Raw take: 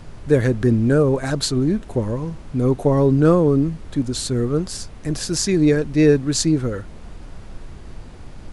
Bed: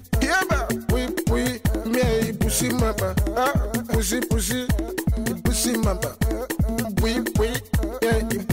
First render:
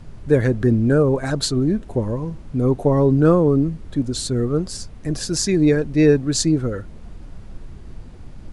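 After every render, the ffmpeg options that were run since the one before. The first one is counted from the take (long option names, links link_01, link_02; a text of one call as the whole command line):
ffmpeg -i in.wav -af "afftdn=noise_reduction=6:noise_floor=-38" out.wav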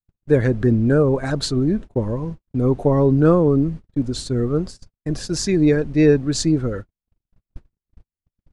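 ffmpeg -i in.wav -af "highshelf=frequency=8600:gain=-10.5,agate=range=-58dB:threshold=-28dB:ratio=16:detection=peak" out.wav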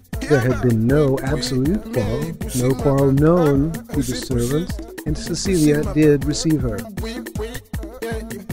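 ffmpeg -i in.wav -i bed.wav -filter_complex "[1:a]volume=-5.5dB[link_01];[0:a][link_01]amix=inputs=2:normalize=0" out.wav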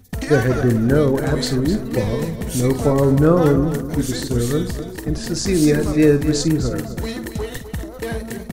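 ffmpeg -i in.wav -filter_complex "[0:a]asplit=2[link_01][link_02];[link_02]adelay=49,volume=-11.5dB[link_03];[link_01][link_03]amix=inputs=2:normalize=0,aecho=1:1:255|510|765:0.282|0.0817|0.0237" out.wav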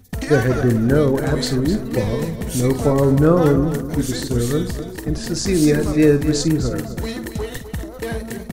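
ffmpeg -i in.wav -af anull out.wav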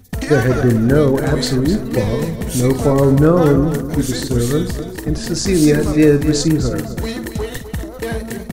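ffmpeg -i in.wav -af "volume=3dB,alimiter=limit=-2dB:level=0:latency=1" out.wav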